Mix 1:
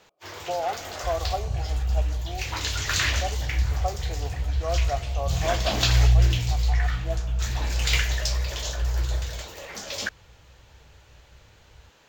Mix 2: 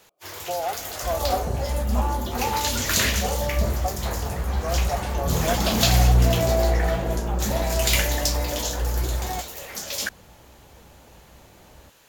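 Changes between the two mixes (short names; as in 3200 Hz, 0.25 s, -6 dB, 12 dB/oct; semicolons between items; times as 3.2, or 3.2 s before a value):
second sound: remove inverse Chebyshev band-stop 380–920 Hz, stop band 70 dB; master: remove running mean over 4 samples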